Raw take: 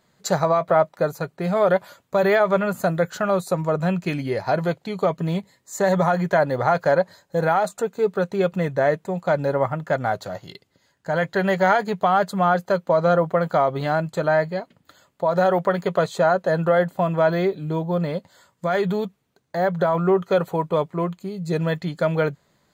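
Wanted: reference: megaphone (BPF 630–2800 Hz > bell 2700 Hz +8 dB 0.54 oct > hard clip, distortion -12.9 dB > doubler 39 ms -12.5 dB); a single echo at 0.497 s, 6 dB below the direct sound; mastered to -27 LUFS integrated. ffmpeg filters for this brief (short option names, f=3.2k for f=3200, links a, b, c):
-filter_complex "[0:a]highpass=630,lowpass=2.8k,equalizer=f=2.7k:t=o:w=0.54:g=8,aecho=1:1:497:0.501,asoftclip=type=hard:threshold=-17.5dB,asplit=2[a][b];[b]adelay=39,volume=-12.5dB[c];[a][c]amix=inputs=2:normalize=0,volume=-1.5dB"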